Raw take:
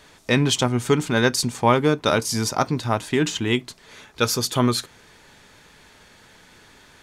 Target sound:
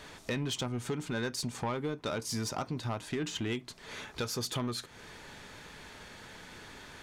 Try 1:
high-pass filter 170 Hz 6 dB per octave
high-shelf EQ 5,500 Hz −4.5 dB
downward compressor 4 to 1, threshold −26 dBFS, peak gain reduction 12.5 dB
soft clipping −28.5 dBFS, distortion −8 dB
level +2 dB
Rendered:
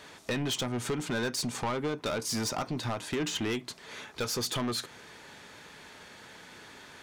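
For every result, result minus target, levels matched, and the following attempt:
downward compressor: peak gain reduction −5.5 dB; 125 Hz band −3.0 dB
high-pass filter 170 Hz 6 dB per octave
high-shelf EQ 5,500 Hz −4.5 dB
downward compressor 4 to 1, threshold −33.5 dBFS, peak gain reduction 18 dB
soft clipping −28.5 dBFS, distortion −13 dB
level +2 dB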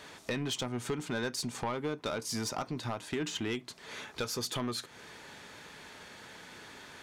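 125 Hz band −3.0 dB
high-shelf EQ 5,500 Hz −4.5 dB
downward compressor 4 to 1, threshold −33.5 dBFS, peak gain reduction 18 dB
soft clipping −28.5 dBFS, distortion −14 dB
level +2 dB

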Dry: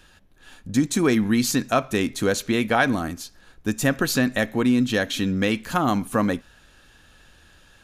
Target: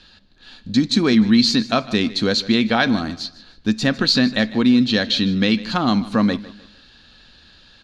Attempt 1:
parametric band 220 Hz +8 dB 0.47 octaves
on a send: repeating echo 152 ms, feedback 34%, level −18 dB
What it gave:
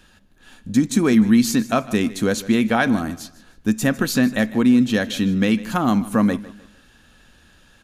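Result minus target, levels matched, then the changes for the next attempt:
4,000 Hz band −9.5 dB
add first: low-pass with resonance 4,300 Hz, resonance Q 5.8

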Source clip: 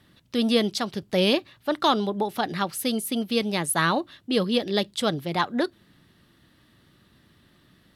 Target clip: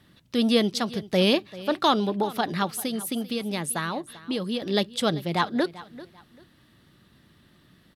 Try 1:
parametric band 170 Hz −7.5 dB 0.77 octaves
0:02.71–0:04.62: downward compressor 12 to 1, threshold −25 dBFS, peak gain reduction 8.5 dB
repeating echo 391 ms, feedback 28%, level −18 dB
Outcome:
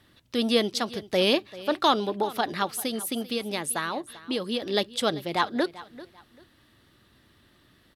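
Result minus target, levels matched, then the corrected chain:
125 Hz band −6.5 dB
parametric band 170 Hz +2 dB 0.77 octaves
0:02.71–0:04.62: downward compressor 12 to 1, threshold −25 dBFS, peak gain reduction 9 dB
repeating echo 391 ms, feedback 28%, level −18 dB

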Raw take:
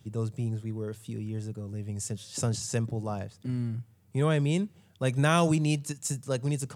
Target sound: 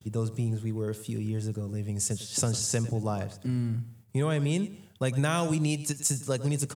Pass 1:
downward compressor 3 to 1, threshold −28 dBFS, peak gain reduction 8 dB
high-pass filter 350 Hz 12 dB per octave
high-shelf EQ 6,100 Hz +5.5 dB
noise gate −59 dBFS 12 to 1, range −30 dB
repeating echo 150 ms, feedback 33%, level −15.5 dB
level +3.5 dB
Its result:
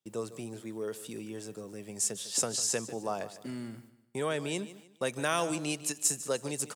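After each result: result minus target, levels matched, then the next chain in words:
echo 47 ms late; 250 Hz band −4.0 dB
downward compressor 3 to 1, threshold −28 dBFS, peak gain reduction 8 dB
high-pass filter 350 Hz 12 dB per octave
high-shelf EQ 6,100 Hz +5.5 dB
noise gate −59 dBFS 12 to 1, range −30 dB
repeating echo 103 ms, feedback 33%, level −15.5 dB
level +3.5 dB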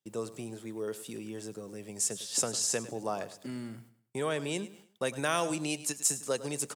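250 Hz band −3.5 dB
downward compressor 3 to 1, threshold −28 dBFS, peak gain reduction 8 dB
high-shelf EQ 6,100 Hz +5.5 dB
noise gate −59 dBFS 12 to 1, range −30 dB
repeating echo 103 ms, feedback 33%, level −15.5 dB
level +3.5 dB

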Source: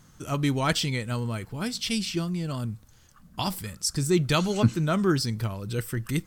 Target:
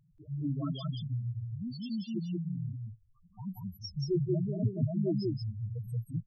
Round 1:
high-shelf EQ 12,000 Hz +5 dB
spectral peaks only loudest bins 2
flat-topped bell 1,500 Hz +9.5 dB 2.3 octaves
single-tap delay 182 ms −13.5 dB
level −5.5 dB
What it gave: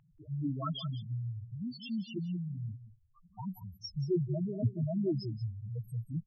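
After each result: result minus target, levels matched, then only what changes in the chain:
2,000 Hz band +8.5 dB; echo-to-direct −11.5 dB
remove: flat-topped bell 1,500 Hz +9.5 dB 2.3 octaves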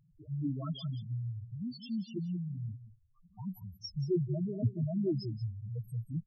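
echo-to-direct −11.5 dB
change: single-tap delay 182 ms −2 dB

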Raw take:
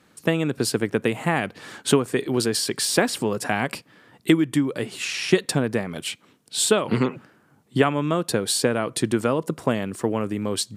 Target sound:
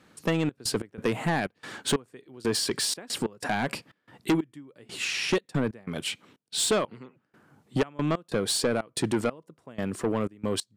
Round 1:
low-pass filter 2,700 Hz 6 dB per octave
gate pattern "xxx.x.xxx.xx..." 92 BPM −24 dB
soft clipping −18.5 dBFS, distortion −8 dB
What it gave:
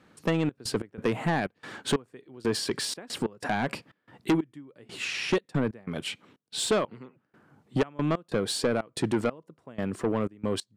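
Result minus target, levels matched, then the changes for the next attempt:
8,000 Hz band −4.5 dB
change: low-pass filter 7,100 Hz 6 dB per octave

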